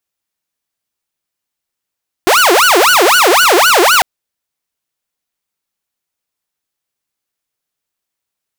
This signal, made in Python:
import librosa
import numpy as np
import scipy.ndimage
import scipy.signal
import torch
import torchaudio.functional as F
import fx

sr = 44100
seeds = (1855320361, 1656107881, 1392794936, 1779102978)

y = fx.siren(sr, length_s=1.75, kind='wail', low_hz=341.0, high_hz=1490.0, per_s=3.9, wave='saw', level_db=-3.5)